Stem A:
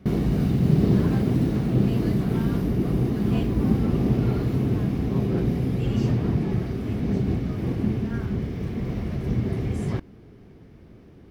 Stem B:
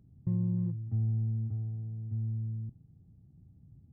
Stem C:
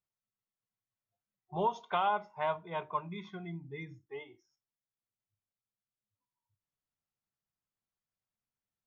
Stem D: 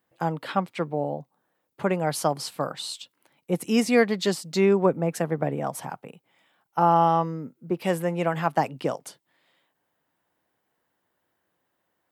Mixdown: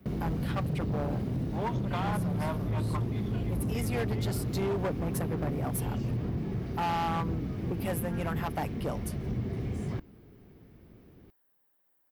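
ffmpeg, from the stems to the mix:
ffmpeg -i stem1.wav -i stem2.wav -i stem3.wav -i stem4.wav -filter_complex "[0:a]acrossover=split=140[link_01][link_02];[link_02]acompressor=threshold=-26dB:ratio=6[link_03];[link_01][link_03]amix=inputs=2:normalize=0,volume=-6.5dB[link_04];[1:a]adelay=1750,volume=-1dB[link_05];[2:a]volume=-2dB,asplit=2[link_06][link_07];[3:a]aecho=1:1:6.9:0.4,aexciter=amount=3.1:drive=8.3:freq=9800,volume=-7.5dB[link_08];[link_07]apad=whole_len=534681[link_09];[link_08][link_09]sidechaincompress=threshold=-45dB:ratio=8:attack=34:release=951[link_10];[link_04][link_05][link_06][link_10]amix=inputs=4:normalize=0,asoftclip=type=hard:threshold=-26.5dB" out.wav

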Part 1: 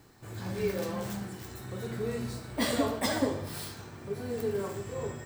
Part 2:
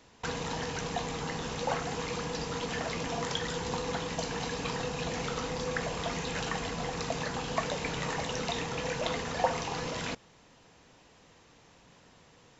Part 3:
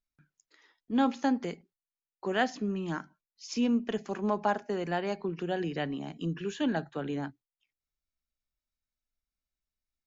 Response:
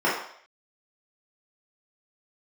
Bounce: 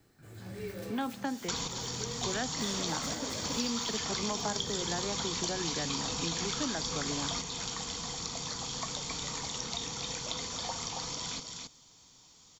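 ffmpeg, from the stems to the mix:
-filter_complex "[0:a]equalizer=frequency=980:width_type=o:width=0.42:gain=-7.5,volume=-7.5dB,asplit=2[link_01][link_02];[link_02]volume=-5dB[link_03];[1:a]aecho=1:1:0.9:0.41,aexciter=amount=5.8:drive=5.5:freq=3400,adelay=1250,volume=-0.5dB,asplit=2[link_04][link_05];[link_05]volume=-15dB[link_06];[2:a]lowpass=frequency=2500:poles=1,volume=2.5dB,asplit=2[link_07][link_08];[link_08]apad=whole_len=610570[link_09];[link_04][link_09]sidechaingate=range=-8dB:threshold=-50dB:ratio=16:detection=peak[link_10];[link_03][link_06]amix=inputs=2:normalize=0,aecho=0:1:274:1[link_11];[link_01][link_10][link_07][link_11]amix=inputs=4:normalize=0,acrossover=split=360|850|3400[link_12][link_13][link_14][link_15];[link_12]acompressor=threshold=-38dB:ratio=4[link_16];[link_13]acompressor=threshold=-44dB:ratio=4[link_17];[link_14]acompressor=threshold=-38dB:ratio=4[link_18];[link_15]acompressor=threshold=-38dB:ratio=4[link_19];[link_16][link_17][link_18][link_19]amix=inputs=4:normalize=0"

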